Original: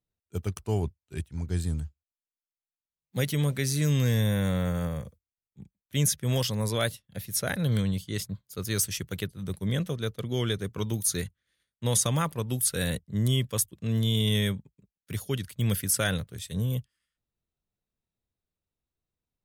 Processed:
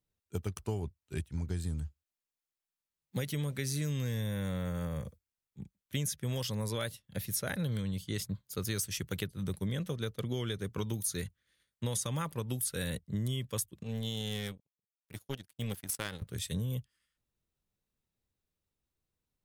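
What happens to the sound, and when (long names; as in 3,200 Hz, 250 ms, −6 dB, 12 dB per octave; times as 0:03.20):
0:13.83–0:16.22: power curve on the samples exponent 2
whole clip: notch filter 690 Hz, Q 13; downward compressor 6 to 1, threshold −33 dBFS; level +1.5 dB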